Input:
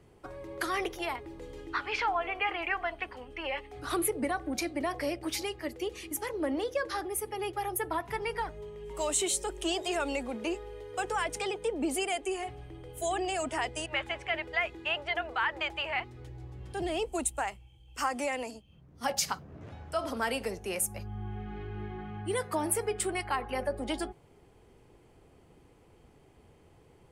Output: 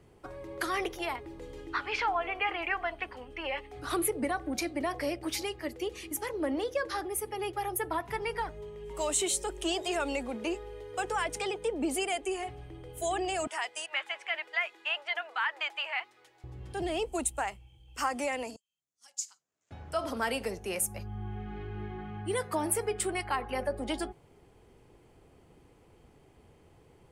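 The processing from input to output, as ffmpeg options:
-filter_complex "[0:a]asettb=1/sr,asplit=3[a][b][c];[a]atrim=end=13.474[d];[b]atrim=start=13.47:end=16.44,asetpts=PTS-STARTPTS,afade=t=in:d=0.004:c=qsin,afade=t=out:st=2.966:d=0.004:c=qsin,highpass=880[e];[c]atrim=start=16.436[f];[d][e]acrossfade=d=0.004:c1=hsin:c2=qsin[g];[g][f]acrossfade=d=0.004:c1=qsin:c2=hsin,asettb=1/sr,asplit=3[h][i][j];[h]atrim=end=18.564[k];[i]atrim=start=18.56:end=19.71,asetpts=PTS-STARTPTS,afade=t=in:d=0.004:c=qsin,afade=t=out:st=1.146:d=0.004:c=qsin,bandpass=f=7.2k:t=q:w=5.6[l];[j]atrim=start=19.706[m];[k][l]acrossfade=d=0.004:c1=hsin:c2=qsin[n];[n][m]acrossfade=d=0.004:c1=qsin:c2=hsin"

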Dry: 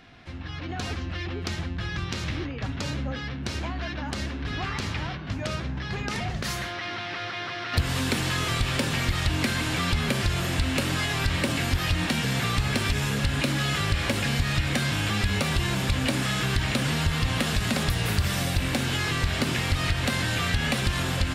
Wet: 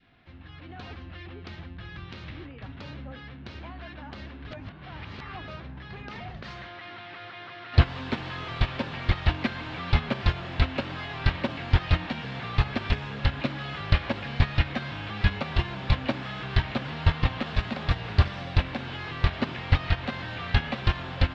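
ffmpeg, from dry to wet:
-filter_complex "[0:a]asplit=3[a][b][c];[a]atrim=end=4.512[d];[b]atrim=start=4.508:end=5.482,asetpts=PTS-STARTPTS,areverse[e];[c]atrim=start=5.478[f];[d][e]acrossfade=d=0.004:c1=hsin:c2=hsin[g];[g][f]acrossfade=d=0.004:c1=hsin:c2=hsin,agate=range=-18dB:threshold=-21dB:ratio=16:detection=peak,lowpass=f=4.1k:w=0.5412,lowpass=f=4.1k:w=1.3066,adynamicequalizer=threshold=0.00178:dfrequency=850:dqfactor=1:tfrequency=850:tqfactor=1:attack=5:release=100:ratio=0.375:range=3:mode=boostabove:tftype=bell,volume=8dB"

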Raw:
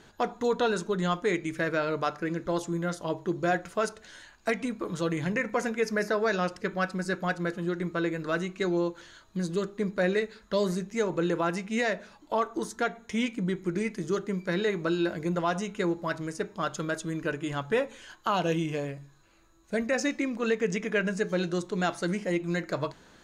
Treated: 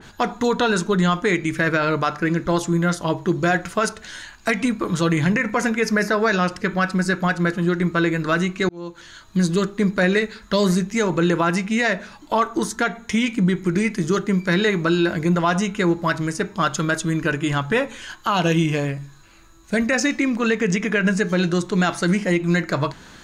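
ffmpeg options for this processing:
-filter_complex "[0:a]asplit=2[a][b];[a]atrim=end=8.69,asetpts=PTS-STARTPTS,afade=t=out:st=8.686:d=0.004:c=hsin[c];[b]atrim=start=8.69,asetpts=PTS-STARTPTS,afade=t=in:d=0.68[d];[c][d]concat=n=2:v=0:a=1,equalizer=f=510:w=0.96:g=-7,alimiter=level_in=22dB:limit=-1dB:release=50:level=0:latency=1,adynamicequalizer=threshold=0.0501:dfrequency=2600:dqfactor=0.7:tfrequency=2600:tqfactor=0.7:attack=5:release=100:ratio=0.375:range=1.5:mode=cutabove:tftype=highshelf,volume=-8.5dB"

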